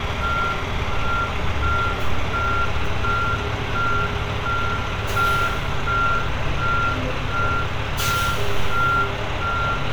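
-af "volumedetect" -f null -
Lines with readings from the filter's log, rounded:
mean_volume: -20.6 dB
max_volume: -7.9 dB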